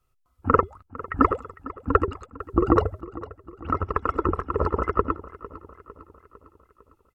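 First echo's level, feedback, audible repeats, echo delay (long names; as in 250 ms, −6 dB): −17.5 dB, 54%, 4, 453 ms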